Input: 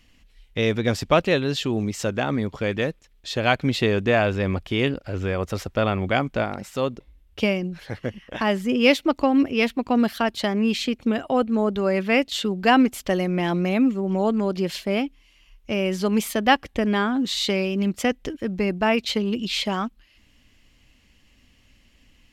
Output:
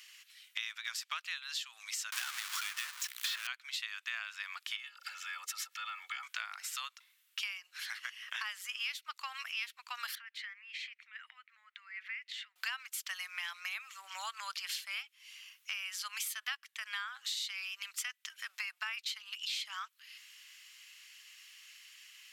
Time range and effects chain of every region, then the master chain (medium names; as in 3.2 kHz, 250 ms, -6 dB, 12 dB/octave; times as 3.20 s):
2.12–3.47 s: hum notches 60/120/180/240/300/360/420 Hz + power-law waveshaper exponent 0.35 + three bands compressed up and down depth 100%
4.76–6.23 s: compression 8:1, threshold -32 dBFS + comb 2.3 ms, depth 84% + phase dispersion lows, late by 45 ms, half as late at 520 Hz
10.15–12.56 s: compression 10:1, threshold -31 dBFS + band-pass filter 2 kHz, Q 4.6
whole clip: steep high-pass 1.2 kHz 36 dB/octave; treble shelf 4.1 kHz +8.5 dB; compression 6:1, threshold -42 dBFS; trim +4 dB